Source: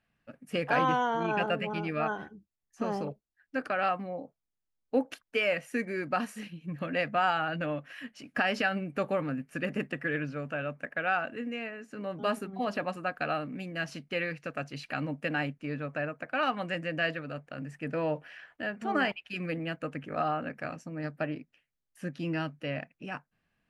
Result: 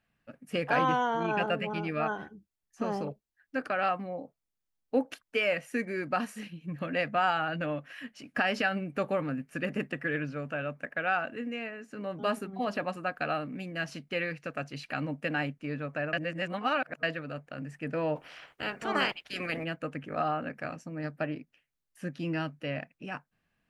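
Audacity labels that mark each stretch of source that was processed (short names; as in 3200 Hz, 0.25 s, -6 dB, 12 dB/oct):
16.130000	17.030000	reverse
18.150000	19.630000	spectral limiter ceiling under each frame's peak by 19 dB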